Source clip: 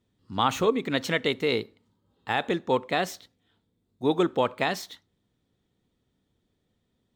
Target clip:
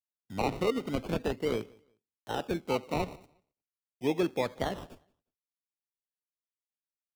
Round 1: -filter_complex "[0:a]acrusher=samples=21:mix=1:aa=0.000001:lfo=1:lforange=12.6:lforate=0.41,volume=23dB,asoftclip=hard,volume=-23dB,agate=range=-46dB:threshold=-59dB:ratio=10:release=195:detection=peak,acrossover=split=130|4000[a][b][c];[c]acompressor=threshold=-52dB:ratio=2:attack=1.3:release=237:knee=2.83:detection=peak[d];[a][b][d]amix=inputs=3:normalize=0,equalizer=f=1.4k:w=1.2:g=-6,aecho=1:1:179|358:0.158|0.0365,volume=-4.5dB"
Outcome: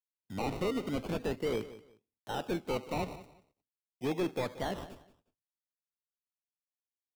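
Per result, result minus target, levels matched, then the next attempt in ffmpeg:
overloaded stage: distortion +30 dB; echo-to-direct +10 dB
-filter_complex "[0:a]acrusher=samples=21:mix=1:aa=0.000001:lfo=1:lforange=12.6:lforate=0.41,volume=12dB,asoftclip=hard,volume=-12dB,agate=range=-46dB:threshold=-59dB:ratio=10:release=195:detection=peak,acrossover=split=130|4000[a][b][c];[c]acompressor=threshold=-52dB:ratio=2:attack=1.3:release=237:knee=2.83:detection=peak[d];[a][b][d]amix=inputs=3:normalize=0,equalizer=f=1.4k:w=1.2:g=-6,aecho=1:1:179|358:0.158|0.0365,volume=-4.5dB"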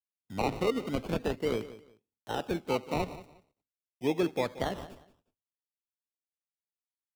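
echo-to-direct +10 dB
-filter_complex "[0:a]acrusher=samples=21:mix=1:aa=0.000001:lfo=1:lforange=12.6:lforate=0.41,volume=12dB,asoftclip=hard,volume=-12dB,agate=range=-46dB:threshold=-59dB:ratio=10:release=195:detection=peak,acrossover=split=130|4000[a][b][c];[c]acompressor=threshold=-52dB:ratio=2:attack=1.3:release=237:knee=2.83:detection=peak[d];[a][b][d]amix=inputs=3:normalize=0,equalizer=f=1.4k:w=1.2:g=-6,aecho=1:1:179|358:0.0501|0.0115,volume=-4.5dB"

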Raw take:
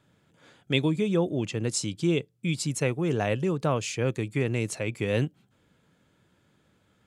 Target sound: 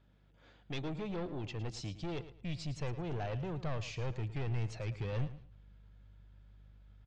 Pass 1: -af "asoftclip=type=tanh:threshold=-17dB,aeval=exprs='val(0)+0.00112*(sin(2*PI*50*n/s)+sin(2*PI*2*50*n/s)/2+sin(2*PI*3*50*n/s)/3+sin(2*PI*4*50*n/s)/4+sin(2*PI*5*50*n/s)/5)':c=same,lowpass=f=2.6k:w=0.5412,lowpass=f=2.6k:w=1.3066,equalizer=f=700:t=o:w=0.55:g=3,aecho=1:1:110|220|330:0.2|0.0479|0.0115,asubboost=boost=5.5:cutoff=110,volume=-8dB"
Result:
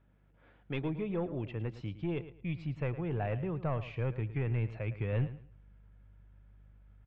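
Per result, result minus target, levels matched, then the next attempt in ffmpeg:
4000 Hz band -10.5 dB; soft clip: distortion -10 dB
-af "asoftclip=type=tanh:threshold=-17dB,aeval=exprs='val(0)+0.00112*(sin(2*PI*50*n/s)+sin(2*PI*2*50*n/s)/2+sin(2*PI*3*50*n/s)/3+sin(2*PI*4*50*n/s)/4+sin(2*PI*5*50*n/s)/5)':c=same,lowpass=f=5.4k:w=0.5412,lowpass=f=5.4k:w=1.3066,equalizer=f=700:t=o:w=0.55:g=3,aecho=1:1:110|220|330:0.2|0.0479|0.0115,asubboost=boost=5.5:cutoff=110,volume=-8dB"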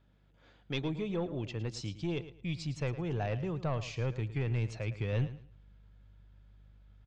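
soft clip: distortion -10 dB
-af "asoftclip=type=tanh:threshold=-27.5dB,aeval=exprs='val(0)+0.00112*(sin(2*PI*50*n/s)+sin(2*PI*2*50*n/s)/2+sin(2*PI*3*50*n/s)/3+sin(2*PI*4*50*n/s)/4+sin(2*PI*5*50*n/s)/5)':c=same,lowpass=f=5.4k:w=0.5412,lowpass=f=5.4k:w=1.3066,equalizer=f=700:t=o:w=0.55:g=3,aecho=1:1:110|220|330:0.2|0.0479|0.0115,asubboost=boost=5.5:cutoff=110,volume=-8dB"

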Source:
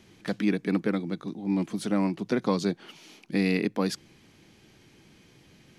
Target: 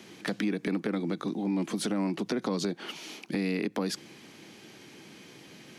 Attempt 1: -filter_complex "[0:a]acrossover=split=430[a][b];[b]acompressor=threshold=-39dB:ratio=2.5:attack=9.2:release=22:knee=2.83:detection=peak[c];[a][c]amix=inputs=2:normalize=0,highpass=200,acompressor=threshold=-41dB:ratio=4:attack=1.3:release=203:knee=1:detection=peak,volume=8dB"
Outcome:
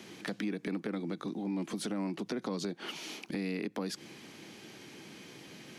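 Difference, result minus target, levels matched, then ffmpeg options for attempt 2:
compressor: peak gain reduction +5.5 dB
-filter_complex "[0:a]acrossover=split=430[a][b];[b]acompressor=threshold=-39dB:ratio=2.5:attack=9.2:release=22:knee=2.83:detection=peak[c];[a][c]amix=inputs=2:normalize=0,highpass=200,acompressor=threshold=-33.5dB:ratio=4:attack=1.3:release=203:knee=1:detection=peak,volume=8dB"

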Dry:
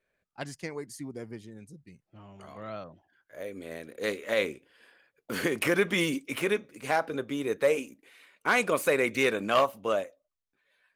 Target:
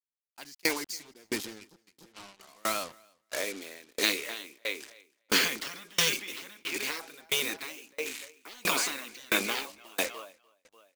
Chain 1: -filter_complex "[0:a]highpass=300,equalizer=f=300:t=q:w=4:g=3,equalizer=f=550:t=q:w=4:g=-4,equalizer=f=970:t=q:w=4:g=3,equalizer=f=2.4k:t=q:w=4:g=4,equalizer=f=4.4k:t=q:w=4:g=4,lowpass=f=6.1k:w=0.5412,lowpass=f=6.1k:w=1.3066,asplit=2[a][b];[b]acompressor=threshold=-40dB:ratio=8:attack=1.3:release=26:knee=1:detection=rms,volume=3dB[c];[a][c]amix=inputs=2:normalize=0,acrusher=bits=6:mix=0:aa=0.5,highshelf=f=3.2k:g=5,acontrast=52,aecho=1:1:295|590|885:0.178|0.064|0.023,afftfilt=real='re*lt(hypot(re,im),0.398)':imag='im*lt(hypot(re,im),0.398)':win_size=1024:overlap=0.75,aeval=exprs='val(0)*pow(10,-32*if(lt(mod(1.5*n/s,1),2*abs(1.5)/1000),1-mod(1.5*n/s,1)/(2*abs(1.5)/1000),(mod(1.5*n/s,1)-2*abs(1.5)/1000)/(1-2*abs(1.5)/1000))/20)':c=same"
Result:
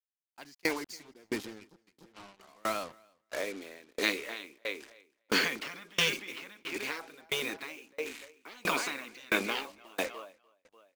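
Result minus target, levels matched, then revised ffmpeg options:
8000 Hz band -6.0 dB
-filter_complex "[0:a]highpass=300,equalizer=f=300:t=q:w=4:g=3,equalizer=f=550:t=q:w=4:g=-4,equalizer=f=970:t=q:w=4:g=3,equalizer=f=2.4k:t=q:w=4:g=4,equalizer=f=4.4k:t=q:w=4:g=4,lowpass=f=6.1k:w=0.5412,lowpass=f=6.1k:w=1.3066,asplit=2[a][b];[b]acompressor=threshold=-40dB:ratio=8:attack=1.3:release=26:knee=1:detection=rms,volume=3dB[c];[a][c]amix=inputs=2:normalize=0,acrusher=bits=6:mix=0:aa=0.5,highshelf=f=3.2k:g=16,acontrast=52,aecho=1:1:295|590|885:0.178|0.064|0.023,afftfilt=real='re*lt(hypot(re,im),0.398)':imag='im*lt(hypot(re,im),0.398)':win_size=1024:overlap=0.75,aeval=exprs='val(0)*pow(10,-32*if(lt(mod(1.5*n/s,1),2*abs(1.5)/1000),1-mod(1.5*n/s,1)/(2*abs(1.5)/1000),(mod(1.5*n/s,1)-2*abs(1.5)/1000)/(1-2*abs(1.5)/1000))/20)':c=same"

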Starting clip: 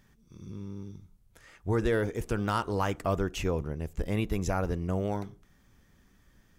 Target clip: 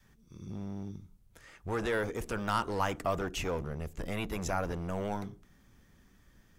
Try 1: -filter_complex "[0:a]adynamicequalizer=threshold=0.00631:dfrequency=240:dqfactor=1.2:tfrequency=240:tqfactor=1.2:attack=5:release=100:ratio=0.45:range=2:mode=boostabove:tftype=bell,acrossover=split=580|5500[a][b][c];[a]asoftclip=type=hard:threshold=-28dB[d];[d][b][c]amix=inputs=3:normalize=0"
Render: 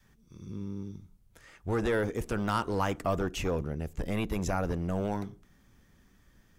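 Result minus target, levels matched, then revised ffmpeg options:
hard clip: distortion -5 dB
-filter_complex "[0:a]adynamicequalizer=threshold=0.00631:dfrequency=240:dqfactor=1.2:tfrequency=240:tqfactor=1.2:attack=5:release=100:ratio=0.45:range=2:mode=boostabove:tftype=bell,acrossover=split=580|5500[a][b][c];[a]asoftclip=type=hard:threshold=-35dB[d];[d][b][c]amix=inputs=3:normalize=0"

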